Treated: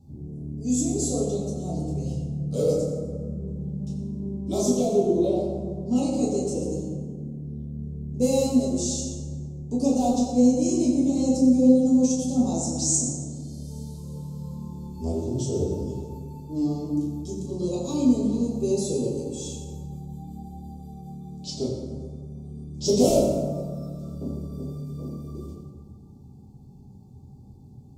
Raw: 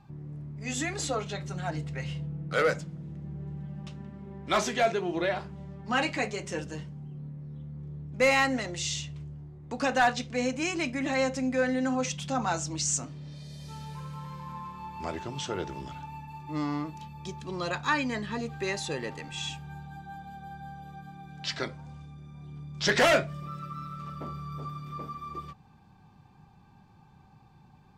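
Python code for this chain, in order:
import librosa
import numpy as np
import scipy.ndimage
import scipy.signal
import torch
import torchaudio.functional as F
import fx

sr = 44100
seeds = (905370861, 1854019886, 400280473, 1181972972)

y = scipy.signal.sosfilt(scipy.signal.cheby1(2, 1.0, [370.0, 7200.0], 'bandstop', fs=sr, output='sos'), x)
y = fx.rev_fdn(y, sr, rt60_s=1.8, lf_ratio=1.0, hf_ratio=0.5, size_ms=72.0, drr_db=-7.0)
y = y * 10.0 ** (3.0 / 20.0)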